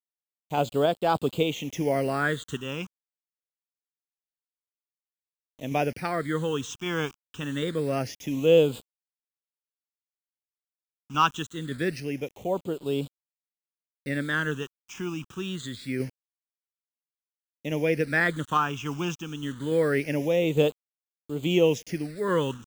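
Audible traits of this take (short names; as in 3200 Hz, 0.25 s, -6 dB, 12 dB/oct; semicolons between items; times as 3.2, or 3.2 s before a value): a quantiser's noise floor 8-bit, dither none; phasing stages 8, 0.25 Hz, lowest notch 560–1900 Hz; random-step tremolo 3.5 Hz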